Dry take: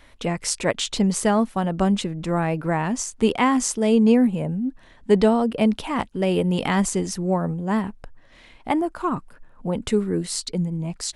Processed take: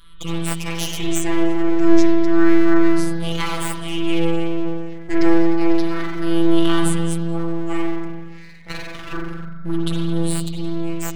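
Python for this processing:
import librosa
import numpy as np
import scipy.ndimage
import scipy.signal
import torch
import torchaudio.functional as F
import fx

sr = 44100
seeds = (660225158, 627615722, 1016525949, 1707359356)

y = fx.spec_ripple(x, sr, per_octave=0.63, drift_hz=-0.3, depth_db=18)
y = fx.band_shelf(y, sr, hz=520.0, db=-13.5, octaves=1.7)
y = fx.robotise(y, sr, hz=167.0)
y = fx.rev_spring(y, sr, rt60_s=1.4, pass_ms=(42,), chirp_ms=70, drr_db=-3.5)
y = np.abs(y)
y = y * librosa.db_to_amplitude(-1.5)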